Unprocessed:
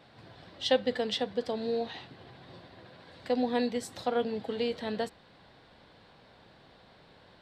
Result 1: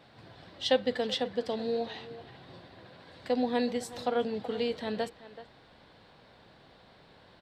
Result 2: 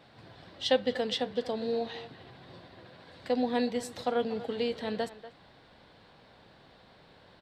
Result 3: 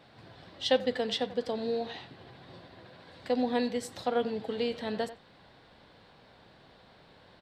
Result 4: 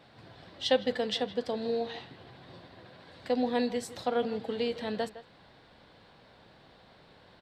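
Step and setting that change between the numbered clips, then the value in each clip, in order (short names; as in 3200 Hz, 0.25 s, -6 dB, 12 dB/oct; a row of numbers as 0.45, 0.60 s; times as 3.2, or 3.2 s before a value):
speakerphone echo, time: 380, 240, 90, 160 ms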